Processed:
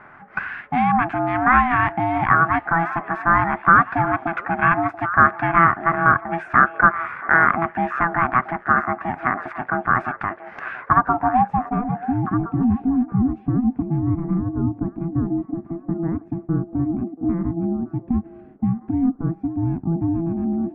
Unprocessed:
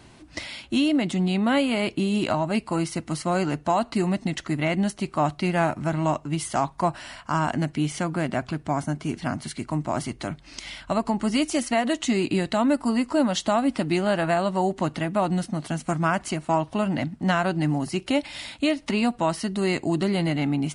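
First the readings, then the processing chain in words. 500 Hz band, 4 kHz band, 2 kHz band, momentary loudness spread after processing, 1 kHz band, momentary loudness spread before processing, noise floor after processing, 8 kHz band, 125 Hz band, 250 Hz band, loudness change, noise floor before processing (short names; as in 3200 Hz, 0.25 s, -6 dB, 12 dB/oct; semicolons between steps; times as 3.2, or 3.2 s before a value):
-3.0 dB, under -15 dB, +11.5 dB, 10 LU, +9.5 dB, 7 LU, -45 dBFS, under -35 dB, +3.0 dB, +1.5 dB, +5.0 dB, -51 dBFS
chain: ring modulator 500 Hz; ten-band EQ 125 Hz +3 dB, 500 Hz -9 dB, 1000 Hz +5 dB, 2000 Hz +9 dB, 4000 Hz -10 dB, 8000 Hz -3 dB; low-pass sweep 1500 Hz -> 290 Hz, 10.73–12.44; delay with a stepping band-pass 0.682 s, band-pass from 530 Hz, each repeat 1.4 oct, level -10 dB; gain +4 dB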